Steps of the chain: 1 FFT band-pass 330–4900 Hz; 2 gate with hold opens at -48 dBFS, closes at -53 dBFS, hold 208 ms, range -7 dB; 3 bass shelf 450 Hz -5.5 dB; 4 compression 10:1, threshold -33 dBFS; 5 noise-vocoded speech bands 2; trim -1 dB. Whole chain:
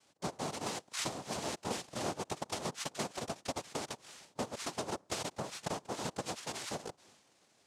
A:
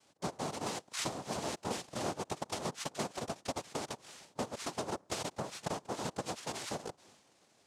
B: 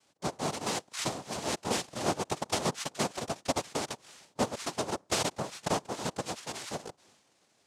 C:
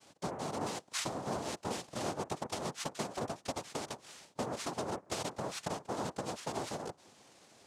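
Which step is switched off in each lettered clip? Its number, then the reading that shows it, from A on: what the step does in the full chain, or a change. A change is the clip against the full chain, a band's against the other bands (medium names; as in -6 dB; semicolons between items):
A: 3, 4 kHz band -1.5 dB; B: 4, mean gain reduction 4.0 dB; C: 1, 4 kHz band -3.0 dB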